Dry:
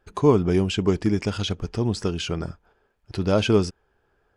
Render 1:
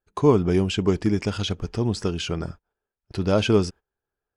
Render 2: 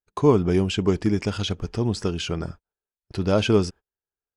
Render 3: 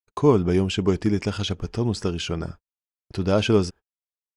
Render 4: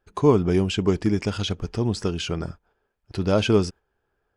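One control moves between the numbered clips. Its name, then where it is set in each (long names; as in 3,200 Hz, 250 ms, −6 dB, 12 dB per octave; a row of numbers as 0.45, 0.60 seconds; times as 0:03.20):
noise gate, range: −20, −32, −53, −7 decibels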